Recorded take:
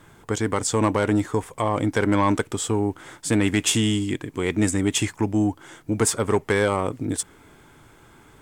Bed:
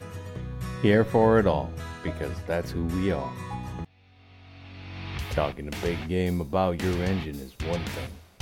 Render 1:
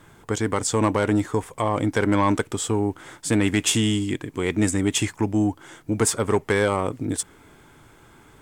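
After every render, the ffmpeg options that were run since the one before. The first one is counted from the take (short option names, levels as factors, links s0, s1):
-af anull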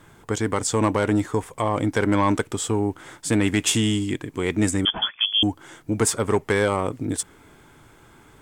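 -filter_complex "[0:a]asettb=1/sr,asplit=3[s0][s1][s2];[s0]atrim=end=4.854[s3];[s1]atrim=start=4.85:end=5.43,asetpts=PTS-STARTPTS,afade=t=in:d=0.004:c=qsin,afade=t=out:st=0.576:d=0.004:c=qsin,lowpass=f=3000:t=q:w=0.5098,lowpass=f=3000:t=q:w=0.6013,lowpass=f=3000:t=q:w=0.9,lowpass=f=3000:t=q:w=2.563,afreqshift=-3500[s4];[s2]atrim=start=5.426[s5];[s3][s4]acrossfade=d=0.004:c1=hsin:c2=qsin[s6];[s6][s5]acrossfade=d=0.004:c1=qsin:c2=hsin"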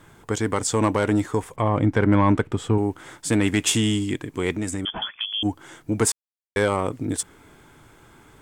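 -filter_complex "[0:a]asettb=1/sr,asplit=3[s0][s1][s2];[s0]atrim=end=1.564[s3];[s1]atrim=start=1.56:end=2.78,asetpts=PTS-STARTPTS,afade=t=in:d=0.004:c=qsin,afade=t=out:st=1.216:d=0.004:c=qsin,bass=f=250:g=6,treble=f=4000:g=-14[s4];[s2]atrim=start=2.776[s5];[s3][s4]acrossfade=d=0.004:c1=hsin:c2=qsin[s6];[s6][s5]acrossfade=d=0.004:c1=qsin:c2=hsin,asplit=3[s7][s8][s9];[s7]afade=t=out:st=4.53:d=0.02[s10];[s8]acompressor=threshold=0.0562:ratio=3:attack=3.2:release=140:knee=1:detection=peak,afade=t=in:st=4.53:d=0.02,afade=t=out:st=5.44:d=0.02[s11];[s9]afade=t=in:st=5.44:d=0.02[s12];[s10][s11][s12]amix=inputs=3:normalize=0,asplit=3[s13][s14][s15];[s13]atrim=end=6.12,asetpts=PTS-STARTPTS,afade=t=out:st=6.116:d=0.004:c=hsin[s16];[s14]atrim=start=6.12:end=6.56,asetpts=PTS-STARTPTS,volume=0[s17];[s15]atrim=start=6.56,asetpts=PTS-STARTPTS,afade=t=in:d=0.004:c=hsin[s18];[s16][s17][s18]concat=n=3:v=0:a=1"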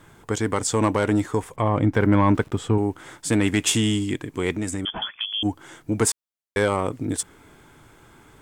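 -filter_complex "[0:a]asettb=1/sr,asplit=3[s0][s1][s2];[s0]atrim=end=1.944[s3];[s1]atrim=start=1.94:end=2.58,asetpts=PTS-STARTPTS,afade=t=in:d=0.004:c=qsin,afade=t=out:st=0.636:d=0.004:c=qsin,aeval=exprs='val(0)*gte(abs(val(0)),0.00473)':c=same[s4];[s2]atrim=start=2.576[s5];[s3][s4]acrossfade=d=0.004:c1=hsin:c2=qsin[s6];[s6][s5]acrossfade=d=0.004:c1=qsin:c2=hsin"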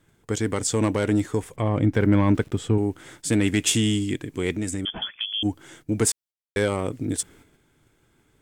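-af "agate=range=0.282:threshold=0.00398:ratio=16:detection=peak,equalizer=f=1000:w=1.2:g=-8"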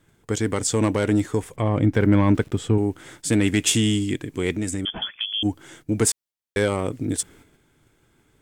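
-af "volume=1.19"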